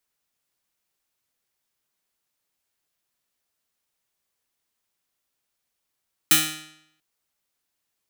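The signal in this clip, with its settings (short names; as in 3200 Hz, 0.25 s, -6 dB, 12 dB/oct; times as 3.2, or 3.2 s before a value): plucked string D#3, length 0.69 s, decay 0.75 s, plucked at 0.29, bright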